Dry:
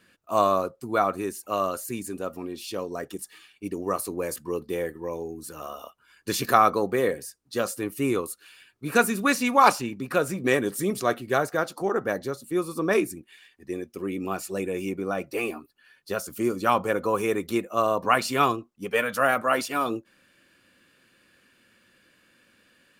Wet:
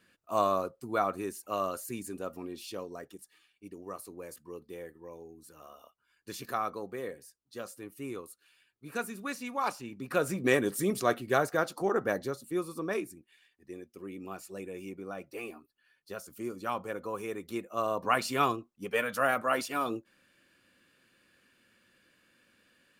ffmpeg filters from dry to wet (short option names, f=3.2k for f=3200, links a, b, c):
-af "volume=12dB,afade=t=out:st=2.57:d=0.66:silence=0.375837,afade=t=in:st=9.77:d=0.56:silence=0.266073,afade=t=out:st=12.14:d=0.9:silence=0.354813,afade=t=in:st=17.39:d=0.82:silence=0.473151"